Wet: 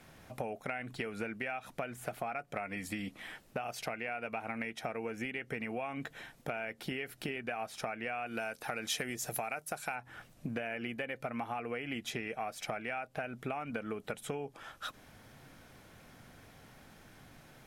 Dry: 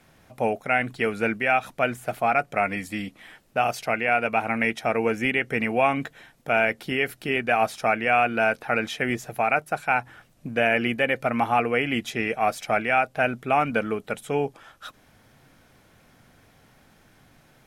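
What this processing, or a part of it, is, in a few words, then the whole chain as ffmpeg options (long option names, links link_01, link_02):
serial compression, peaks first: -filter_complex "[0:a]acompressor=threshold=-29dB:ratio=6,acompressor=threshold=-36dB:ratio=3,asettb=1/sr,asplit=3[link_01][link_02][link_03];[link_01]atrim=end=8.264[link_04];[link_02]atrim=start=8.26:end=9.96,asetpts=PTS-STARTPTS,afade=type=in:duration=0.004:curve=qsin,afade=type=out:start_time=1.696:duration=0.004:curve=qsin,bass=frequency=250:gain=-1,treble=frequency=4000:gain=12[link_05];[link_03]atrim=start=9.956[link_06];[link_04][link_05]acrossfade=duration=0.004:curve1=hsin:curve2=qsin[link_07];[link_07][link_06]acrossfade=duration=0.004:curve1=qsin:curve2=hsin"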